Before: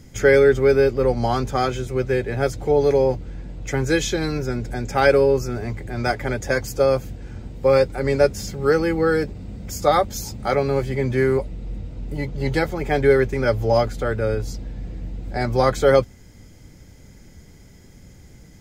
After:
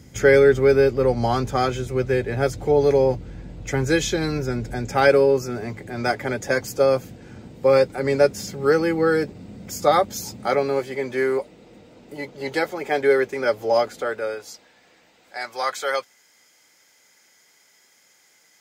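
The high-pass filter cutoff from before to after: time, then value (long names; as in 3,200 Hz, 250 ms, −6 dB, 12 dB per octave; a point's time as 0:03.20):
0:04.77 59 Hz
0:05.20 150 Hz
0:10.29 150 Hz
0:10.95 360 Hz
0:13.98 360 Hz
0:14.70 1,000 Hz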